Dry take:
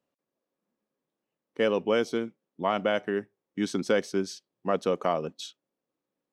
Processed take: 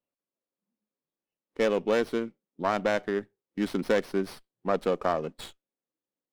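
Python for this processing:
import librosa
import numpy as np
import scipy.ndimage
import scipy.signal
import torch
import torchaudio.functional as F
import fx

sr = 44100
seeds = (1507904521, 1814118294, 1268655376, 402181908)

y = fx.self_delay(x, sr, depth_ms=0.11)
y = fx.noise_reduce_blind(y, sr, reduce_db=10)
y = fx.running_max(y, sr, window=5)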